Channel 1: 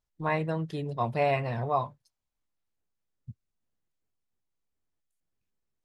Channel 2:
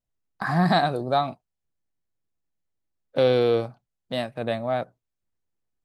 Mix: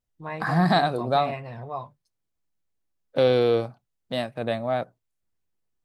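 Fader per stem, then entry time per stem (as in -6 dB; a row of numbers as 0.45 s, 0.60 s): -6.0 dB, 0.0 dB; 0.00 s, 0.00 s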